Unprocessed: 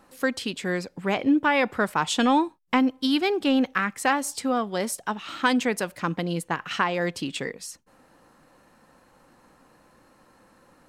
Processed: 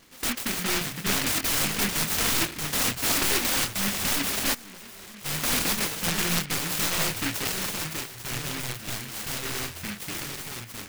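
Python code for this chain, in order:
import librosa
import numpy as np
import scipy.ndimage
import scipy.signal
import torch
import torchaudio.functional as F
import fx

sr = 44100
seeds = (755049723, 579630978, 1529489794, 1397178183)

y = (np.mod(10.0 ** (21.0 / 20.0) * x + 1.0, 2.0) - 1.0) / 10.0 ** (21.0 / 20.0)
y = fx.doubler(y, sr, ms=25.0, db=-5.0)
y = fx.echo_pitch(y, sr, ms=198, semitones=-5, count=3, db_per_echo=-6.0)
y = fx.level_steps(y, sr, step_db=22, at=(4.53, 5.24), fade=0.02)
y = fx.noise_mod_delay(y, sr, seeds[0], noise_hz=2000.0, depth_ms=0.49)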